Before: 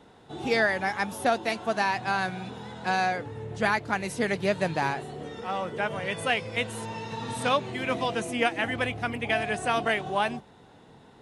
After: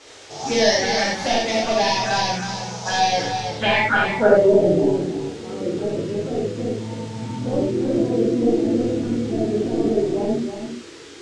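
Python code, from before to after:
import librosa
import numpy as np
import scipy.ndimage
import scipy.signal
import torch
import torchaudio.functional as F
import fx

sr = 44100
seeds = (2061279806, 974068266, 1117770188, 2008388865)

p1 = scipy.signal.medfilt(x, 15)
p2 = fx.bass_treble(p1, sr, bass_db=-8, treble_db=11)
p3 = np.clip(p2, -10.0 ** (-21.5 / 20.0), 10.0 ** (-21.5 / 20.0))
p4 = fx.env_phaser(p3, sr, low_hz=180.0, high_hz=1400.0, full_db=-25.5)
p5 = fx.filter_sweep_lowpass(p4, sr, from_hz=6100.0, to_hz=350.0, start_s=3.35, end_s=4.54, q=4.2)
p6 = fx.dmg_noise_band(p5, sr, seeds[0], low_hz=880.0, high_hz=8500.0, level_db=-56.0)
p7 = fx.air_absorb(p6, sr, metres=72.0)
p8 = p7 + fx.echo_single(p7, sr, ms=320, db=-7.5, dry=0)
p9 = fx.rev_gated(p8, sr, seeds[1], gate_ms=130, shape='flat', drr_db=-6.0)
y = p9 * 10.0 ** (6.0 / 20.0)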